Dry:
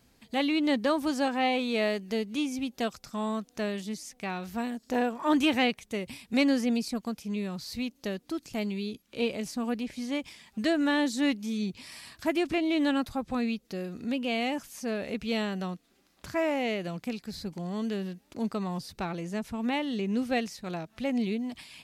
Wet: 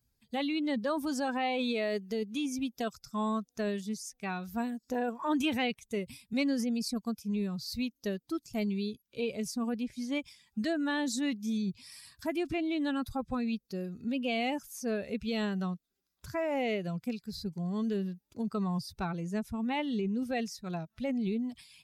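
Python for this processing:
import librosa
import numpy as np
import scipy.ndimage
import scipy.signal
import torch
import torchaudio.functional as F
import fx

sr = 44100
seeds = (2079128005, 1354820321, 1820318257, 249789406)

p1 = fx.bin_expand(x, sr, power=1.5)
p2 = fx.over_compress(p1, sr, threshold_db=-34.0, ratio=-0.5)
p3 = p1 + (p2 * 10.0 ** (1.0 / 20.0))
y = p3 * 10.0 ** (-4.5 / 20.0)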